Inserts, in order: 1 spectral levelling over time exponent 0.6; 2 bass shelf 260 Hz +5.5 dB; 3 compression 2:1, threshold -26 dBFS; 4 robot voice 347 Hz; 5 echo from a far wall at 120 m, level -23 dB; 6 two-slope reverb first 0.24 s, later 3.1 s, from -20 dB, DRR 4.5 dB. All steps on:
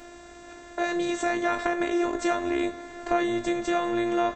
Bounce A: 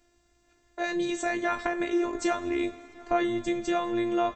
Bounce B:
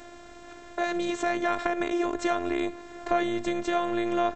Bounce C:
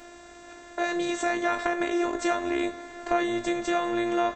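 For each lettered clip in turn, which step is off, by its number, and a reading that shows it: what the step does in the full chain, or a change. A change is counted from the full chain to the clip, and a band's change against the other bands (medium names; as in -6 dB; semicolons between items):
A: 1, momentary loudness spread change -8 LU; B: 6, loudness change -1.5 LU; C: 2, 125 Hz band -3.0 dB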